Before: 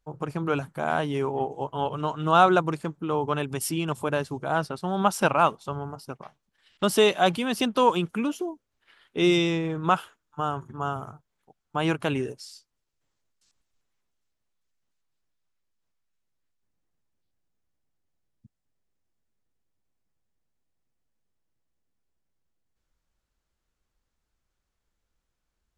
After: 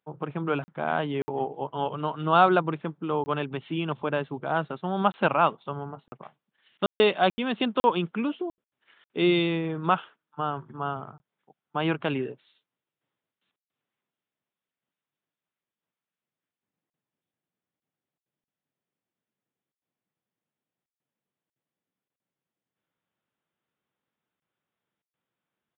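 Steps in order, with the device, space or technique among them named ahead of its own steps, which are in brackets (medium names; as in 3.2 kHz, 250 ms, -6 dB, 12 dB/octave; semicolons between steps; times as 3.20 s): call with lost packets (high-pass 130 Hz 24 dB/octave; resampled via 8 kHz; lost packets bursts); trim -1 dB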